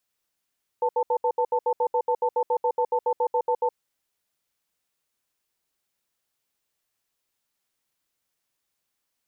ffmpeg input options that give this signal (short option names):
-f lavfi -i "aevalsrc='0.075*(sin(2*PI*491*t)+sin(2*PI*888*t))*clip(min(mod(t,0.14),0.07-mod(t,0.14))/0.005,0,1)':d=2.89:s=44100"